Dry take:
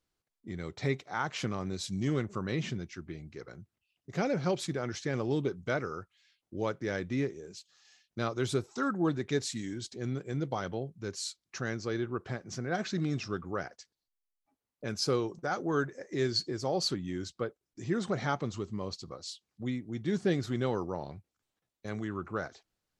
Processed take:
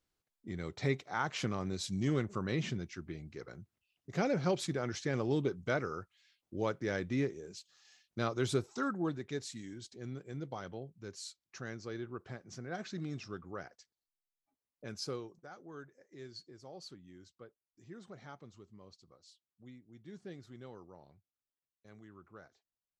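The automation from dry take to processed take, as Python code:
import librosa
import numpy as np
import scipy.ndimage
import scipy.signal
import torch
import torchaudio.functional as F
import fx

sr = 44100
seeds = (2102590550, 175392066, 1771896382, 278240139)

y = fx.gain(x, sr, db=fx.line((8.67, -1.5), (9.27, -8.5), (15.0, -8.5), (15.54, -19.0)))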